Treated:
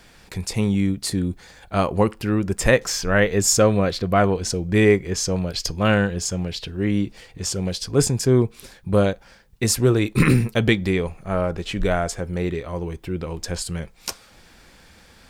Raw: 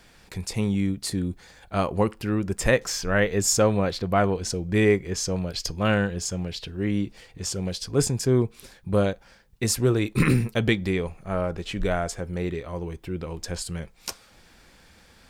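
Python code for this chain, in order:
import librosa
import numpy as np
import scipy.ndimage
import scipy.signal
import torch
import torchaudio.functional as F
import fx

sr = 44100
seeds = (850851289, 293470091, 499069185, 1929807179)

y = fx.notch(x, sr, hz=870.0, q=5.6, at=(3.55, 4.2))
y = y * 10.0 ** (4.0 / 20.0)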